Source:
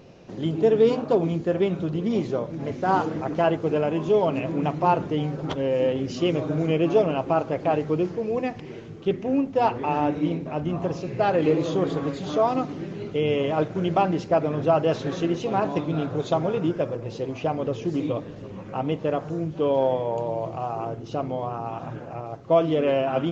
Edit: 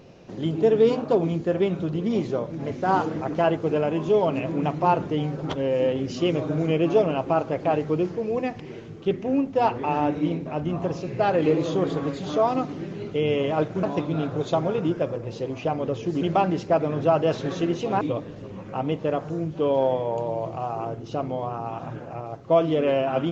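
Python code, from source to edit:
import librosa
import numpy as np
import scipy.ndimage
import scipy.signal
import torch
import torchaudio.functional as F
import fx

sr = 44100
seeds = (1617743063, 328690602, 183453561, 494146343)

y = fx.edit(x, sr, fx.move(start_s=13.83, length_s=1.79, to_s=18.01), tone=tone)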